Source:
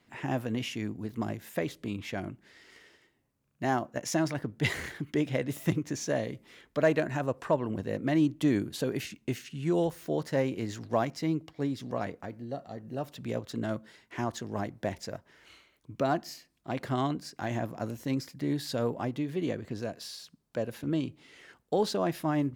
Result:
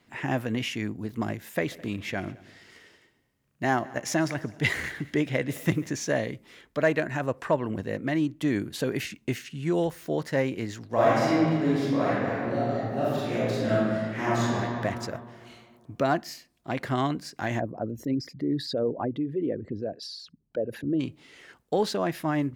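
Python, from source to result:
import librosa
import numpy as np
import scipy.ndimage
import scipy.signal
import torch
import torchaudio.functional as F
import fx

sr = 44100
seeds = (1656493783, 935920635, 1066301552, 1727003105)

y = fx.echo_heads(x, sr, ms=71, heads='second and third', feedback_pct=41, wet_db=-22, at=(1.69, 5.88), fade=0.02)
y = fx.reverb_throw(y, sr, start_s=10.93, length_s=3.51, rt60_s=2.1, drr_db=-10.5)
y = fx.envelope_sharpen(y, sr, power=2.0, at=(17.59, 20.99), fade=0.02)
y = fx.dynamic_eq(y, sr, hz=1900.0, q=1.5, threshold_db=-51.0, ratio=4.0, max_db=5)
y = fx.rider(y, sr, range_db=3, speed_s=0.5)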